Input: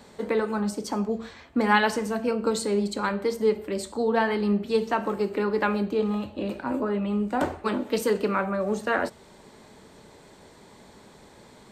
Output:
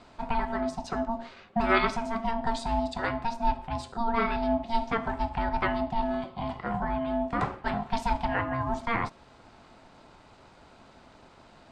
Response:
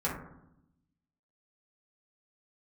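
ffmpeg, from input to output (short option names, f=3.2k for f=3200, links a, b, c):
-af "lowpass=4.9k,aeval=exprs='val(0)*sin(2*PI*460*n/s)':c=same"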